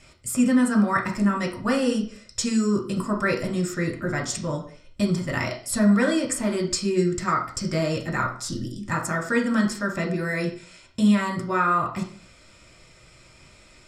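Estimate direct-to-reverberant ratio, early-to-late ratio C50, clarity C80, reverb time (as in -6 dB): 0.5 dB, 9.5 dB, 14.0 dB, 0.45 s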